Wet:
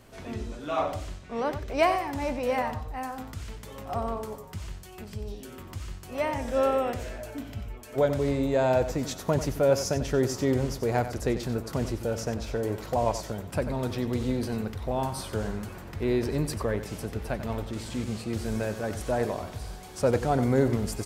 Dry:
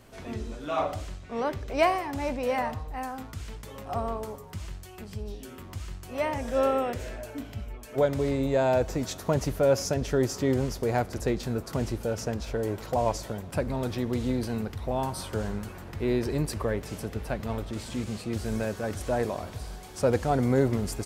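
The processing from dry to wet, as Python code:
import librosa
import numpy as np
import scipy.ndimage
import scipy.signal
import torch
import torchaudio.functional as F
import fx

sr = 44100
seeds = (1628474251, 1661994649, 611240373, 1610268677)

y = x + 10.0 ** (-11.5 / 20.0) * np.pad(x, (int(92 * sr / 1000.0), 0))[:len(x)]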